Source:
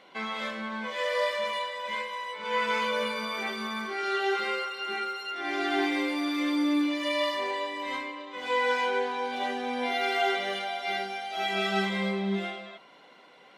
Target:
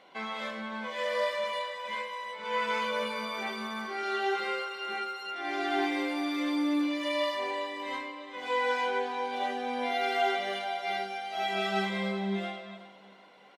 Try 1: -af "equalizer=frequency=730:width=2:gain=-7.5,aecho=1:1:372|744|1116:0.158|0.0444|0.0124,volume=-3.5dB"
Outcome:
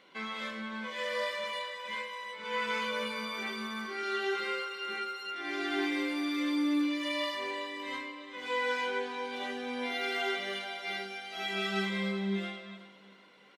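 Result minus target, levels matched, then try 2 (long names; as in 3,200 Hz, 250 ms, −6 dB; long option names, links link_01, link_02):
1,000 Hz band −4.0 dB
-af "equalizer=frequency=730:width=2:gain=4,aecho=1:1:372|744|1116:0.158|0.0444|0.0124,volume=-3.5dB"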